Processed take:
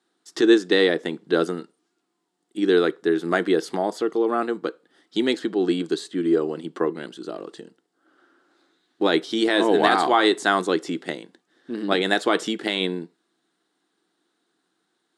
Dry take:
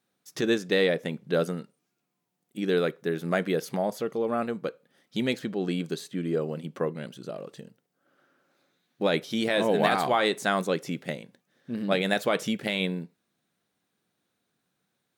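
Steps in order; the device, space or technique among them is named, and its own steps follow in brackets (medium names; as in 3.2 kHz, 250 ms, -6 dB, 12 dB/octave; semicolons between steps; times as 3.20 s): television speaker (cabinet simulation 220–8700 Hz, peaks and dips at 220 Hz -8 dB, 330 Hz +7 dB, 560 Hz -10 dB, 2.4 kHz -9 dB, 6.1 kHz -6 dB); trim +7.5 dB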